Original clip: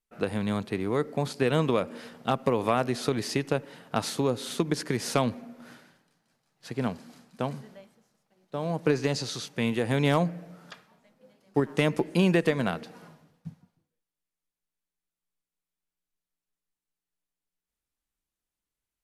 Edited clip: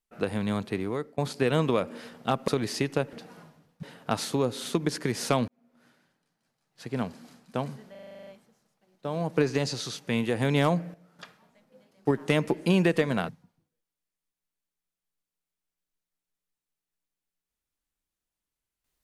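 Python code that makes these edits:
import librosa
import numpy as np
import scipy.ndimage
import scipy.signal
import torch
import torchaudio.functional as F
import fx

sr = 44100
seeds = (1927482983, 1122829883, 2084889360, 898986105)

y = fx.edit(x, sr, fx.fade_out_to(start_s=0.79, length_s=0.39, floor_db=-21.0),
    fx.cut(start_s=2.48, length_s=0.55),
    fx.fade_in_span(start_s=5.33, length_s=1.72),
    fx.stutter(start_s=7.76, slice_s=0.04, count=10),
    fx.clip_gain(start_s=10.43, length_s=0.25, db=-10.5),
    fx.move(start_s=12.78, length_s=0.7, to_s=3.68), tone=tone)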